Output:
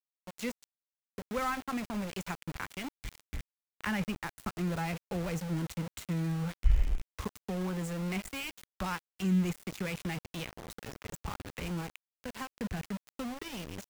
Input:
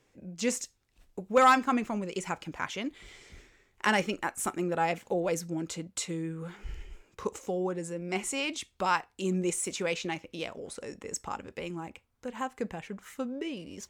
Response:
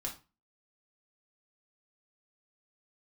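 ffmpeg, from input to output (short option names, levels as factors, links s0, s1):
-filter_complex "[0:a]asubboost=boost=7:cutoff=140,acrossover=split=200|1600|2500[s0][s1][s2][s3];[s2]acontrast=80[s4];[s3]alimiter=level_in=2.51:limit=0.0631:level=0:latency=1:release=254,volume=0.398[s5];[s0][s1][s4][s5]amix=inputs=4:normalize=0,acrossover=split=200[s6][s7];[s7]acompressor=threshold=0.00794:ratio=2[s8];[s6][s8]amix=inputs=2:normalize=0,aeval=exprs='val(0)*gte(abs(val(0)),0.0141)':c=same"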